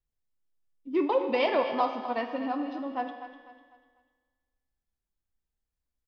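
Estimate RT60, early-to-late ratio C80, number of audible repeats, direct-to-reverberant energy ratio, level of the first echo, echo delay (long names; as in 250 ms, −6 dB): 1.8 s, 7.0 dB, 3, 5.0 dB, −12.0 dB, 249 ms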